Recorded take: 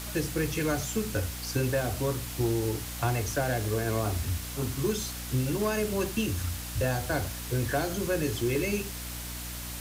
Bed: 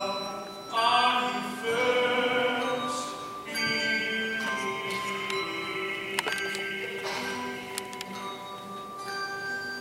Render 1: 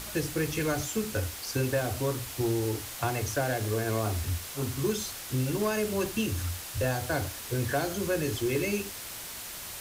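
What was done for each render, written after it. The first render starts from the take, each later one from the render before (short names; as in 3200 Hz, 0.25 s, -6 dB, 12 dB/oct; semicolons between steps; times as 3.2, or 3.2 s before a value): notches 60/120/180/240/300 Hz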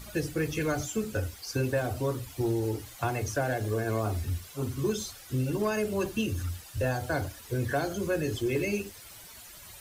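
denoiser 12 dB, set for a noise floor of -41 dBFS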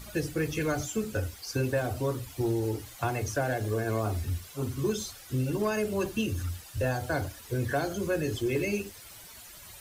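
nothing audible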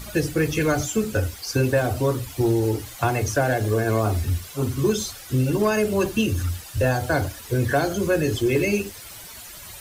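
gain +8 dB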